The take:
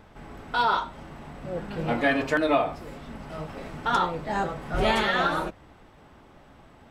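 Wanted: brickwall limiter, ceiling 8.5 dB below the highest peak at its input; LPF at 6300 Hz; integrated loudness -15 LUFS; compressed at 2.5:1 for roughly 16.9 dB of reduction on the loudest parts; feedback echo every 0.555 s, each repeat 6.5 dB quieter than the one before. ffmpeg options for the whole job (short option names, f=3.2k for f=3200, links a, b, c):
-af "lowpass=6.3k,acompressor=threshold=-45dB:ratio=2.5,alimiter=level_in=10.5dB:limit=-24dB:level=0:latency=1,volume=-10.5dB,aecho=1:1:555|1110|1665|2220|2775|3330:0.473|0.222|0.105|0.0491|0.0231|0.0109,volume=29.5dB"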